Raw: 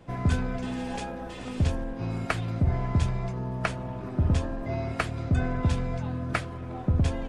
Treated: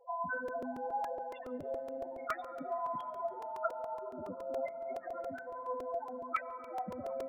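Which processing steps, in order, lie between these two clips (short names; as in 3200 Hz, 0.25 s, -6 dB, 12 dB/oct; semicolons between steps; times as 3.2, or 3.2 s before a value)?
HPF 520 Hz 12 dB/oct; 4.34–5.66 negative-ratio compressor -41 dBFS, ratio -0.5; loudest bins only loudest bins 4; flange 0.76 Hz, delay 2.1 ms, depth 5.6 ms, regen +72%; on a send at -14.5 dB: reverb RT60 5.7 s, pre-delay 72 ms; on the sum: crackling interface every 0.14 s, samples 128, repeat, from 0.48; gain +9 dB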